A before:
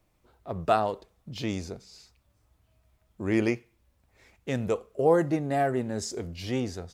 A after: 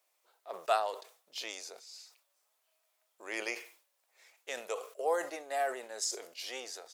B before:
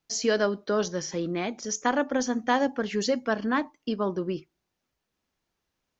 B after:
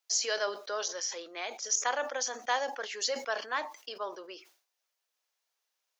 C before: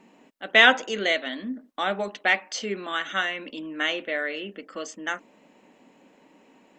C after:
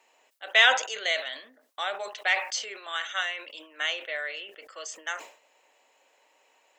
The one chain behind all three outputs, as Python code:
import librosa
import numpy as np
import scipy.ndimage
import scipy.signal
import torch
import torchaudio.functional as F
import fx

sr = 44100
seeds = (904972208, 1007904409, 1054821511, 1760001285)

y = scipy.signal.sosfilt(scipy.signal.butter(4, 520.0, 'highpass', fs=sr, output='sos'), x)
y = fx.high_shelf(y, sr, hz=3200.0, db=10.0)
y = fx.sustainer(y, sr, db_per_s=120.0)
y = F.gain(torch.from_numpy(y), -6.0).numpy()